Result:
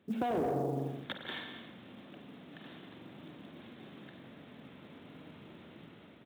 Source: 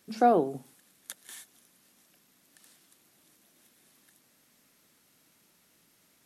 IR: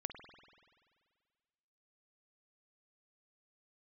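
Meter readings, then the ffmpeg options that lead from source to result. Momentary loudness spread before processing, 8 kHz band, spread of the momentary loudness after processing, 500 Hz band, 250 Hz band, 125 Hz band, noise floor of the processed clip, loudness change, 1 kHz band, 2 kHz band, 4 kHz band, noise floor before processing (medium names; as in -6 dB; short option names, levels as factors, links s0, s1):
23 LU, under -15 dB, 20 LU, -6.5 dB, -3.0 dB, +6.5 dB, -56 dBFS, -11.5 dB, -10.0 dB, +1.0 dB, +5.5 dB, -66 dBFS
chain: -filter_complex "[0:a]asplit=2[s0][s1];[s1]aecho=0:1:168|336:0.2|0.0339[s2];[s0][s2]amix=inputs=2:normalize=0[s3];[1:a]atrim=start_sample=2205,afade=t=out:st=0.42:d=0.01,atrim=end_sample=18963,asetrate=48510,aresample=44100[s4];[s3][s4]afir=irnorm=-1:irlink=0,aresample=8000,asoftclip=type=tanh:threshold=0.0282,aresample=44100,dynaudnorm=f=190:g=7:m=5.31,lowpass=f=3100:p=1,acompressor=threshold=0.0141:ratio=12,highpass=f=65:w=0.5412,highpass=f=65:w=1.3066,equalizer=f=1800:t=o:w=2.6:g=-9,acrusher=bits=8:mode=log:mix=0:aa=0.000001,volume=2.99"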